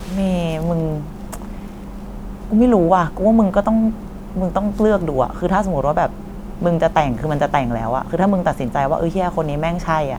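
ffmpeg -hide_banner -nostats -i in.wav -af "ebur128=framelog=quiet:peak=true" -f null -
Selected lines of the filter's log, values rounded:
Integrated loudness:
  I:         -18.3 LUFS
  Threshold: -29.0 LUFS
Loudness range:
  LRA:         2.4 LU
  Threshold: -38.5 LUFS
  LRA low:   -19.5 LUFS
  LRA high:  -17.0 LUFS
True peak:
  Peak:       -1.5 dBFS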